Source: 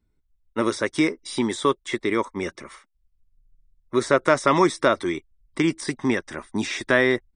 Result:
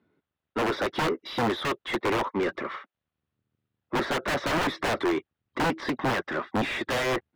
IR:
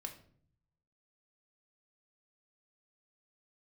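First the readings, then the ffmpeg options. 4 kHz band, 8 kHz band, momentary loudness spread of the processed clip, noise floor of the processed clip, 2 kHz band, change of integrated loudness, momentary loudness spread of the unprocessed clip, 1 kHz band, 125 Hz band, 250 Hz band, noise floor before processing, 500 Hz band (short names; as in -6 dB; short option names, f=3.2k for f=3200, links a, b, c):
-1.0 dB, -7.5 dB, 5 LU, under -85 dBFS, -3.5 dB, -5.0 dB, 11 LU, -2.5 dB, -3.0 dB, -6.0 dB, -69 dBFS, -6.0 dB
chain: -filter_complex "[0:a]highpass=f=100:w=0.5412,highpass=f=100:w=1.3066,equalizer=f=130:t=q:w=4:g=-4,equalizer=f=940:t=q:w=4:g=-4,equalizer=f=2.2k:t=q:w=4:g=-4,lowpass=f=3.8k:w=0.5412,lowpass=f=3.8k:w=1.3066,aeval=exprs='(mod(7.94*val(0)+1,2)-1)/7.94':c=same,asplit=2[a][b];[b]highpass=f=720:p=1,volume=23dB,asoftclip=type=tanh:threshold=-17.5dB[c];[a][c]amix=inputs=2:normalize=0,lowpass=f=1.1k:p=1,volume=-6dB"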